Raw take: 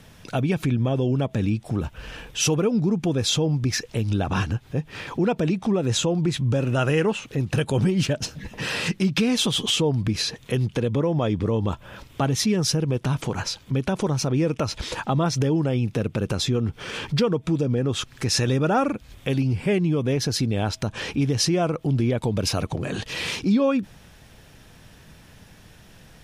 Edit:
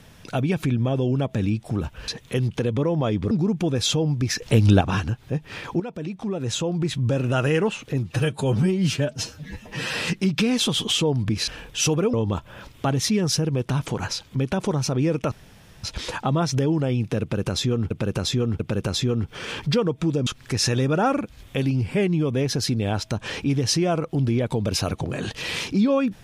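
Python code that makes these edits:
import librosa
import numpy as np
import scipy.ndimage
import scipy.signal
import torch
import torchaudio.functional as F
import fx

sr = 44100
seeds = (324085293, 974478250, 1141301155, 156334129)

y = fx.edit(x, sr, fx.swap(start_s=2.08, length_s=0.66, other_s=10.26, other_length_s=1.23),
    fx.clip_gain(start_s=3.85, length_s=0.39, db=8.0),
    fx.fade_in_from(start_s=5.23, length_s=1.31, floor_db=-12.5),
    fx.stretch_span(start_s=7.43, length_s=1.29, factor=1.5),
    fx.insert_room_tone(at_s=14.67, length_s=0.52),
    fx.repeat(start_s=16.05, length_s=0.69, count=3),
    fx.cut(start_s=17.72, length_s=0.26), tone=tone)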